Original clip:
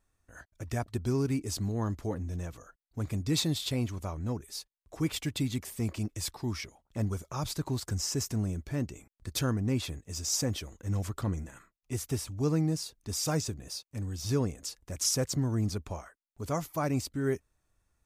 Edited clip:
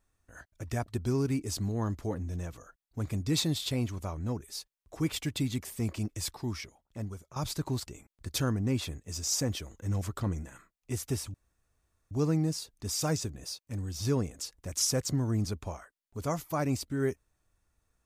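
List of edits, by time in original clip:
6.32–7.36 fade out, to -12.5 dB
7.87–8.88 cut
12.35 insert room tone 0.77 s

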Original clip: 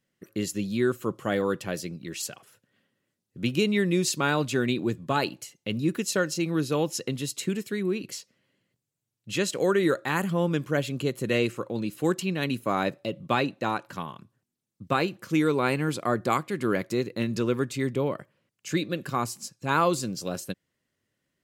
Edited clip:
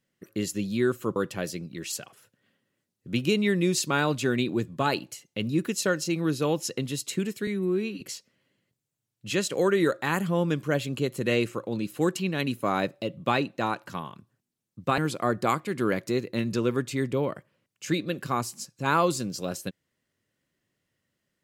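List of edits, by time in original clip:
1.16–1.46 cut
7.77–8.04 stretch 2×
15.01–15.81 cut

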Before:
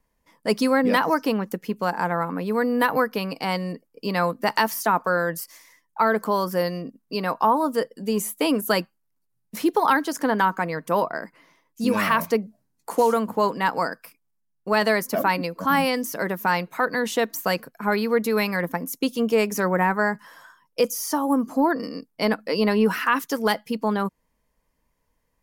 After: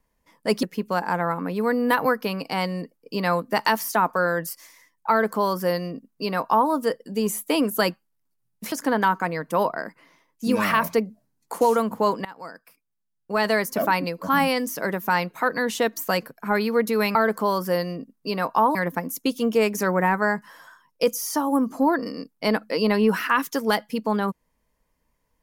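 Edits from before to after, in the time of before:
0.63–1.54 cut
6.01–7.61 copy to 18.52
9.63–10.09 cut
13.62–15.08 fade in, from -22 dB

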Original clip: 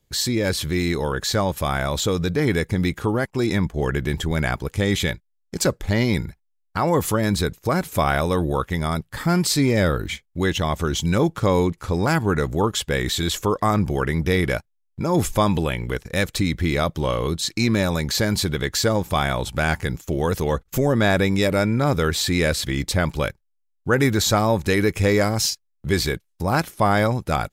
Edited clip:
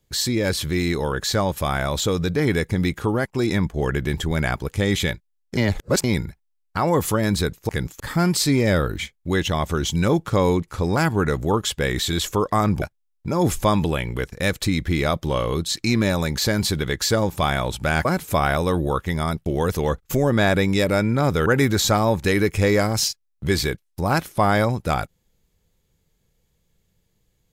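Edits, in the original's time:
5.57–6.04 reverse
7.69–9.1 swap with 19.78–20.09
13.92–14.55 cut
22.09–23.88 cut

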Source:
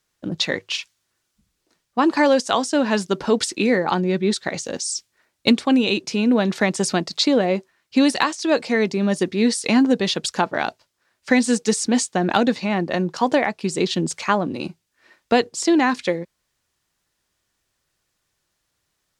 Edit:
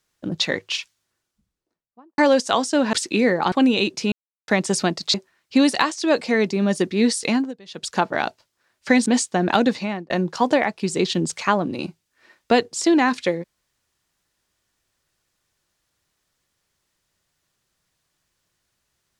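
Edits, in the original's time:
0.76–2.18 studio fade out
2.93–3.39 cut
3.98–5.62 cut
6.22–6.58 mute
7.24–7.55 cut
9.63–10.41 dip -24 dB, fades 0.33 s
11.47–11.87 cut
12.58–12.91 fade out linear

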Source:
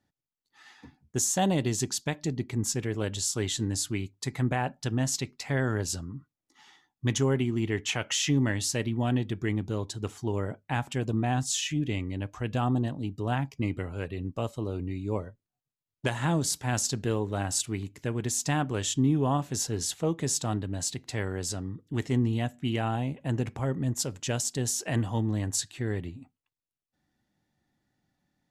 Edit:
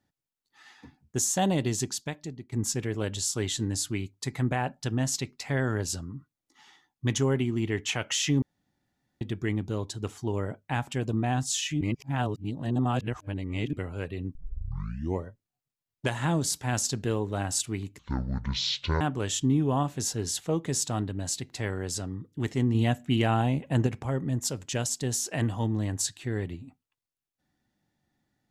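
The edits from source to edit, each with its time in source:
1.76–2.52 fade out, to -16 dB
8.42–9.21 room tone
11.81–13.73 reverse
14.35 tape start 0.90 s
17.99–18.55 speed 55%
22.29–23.41 gain +4.5 dB

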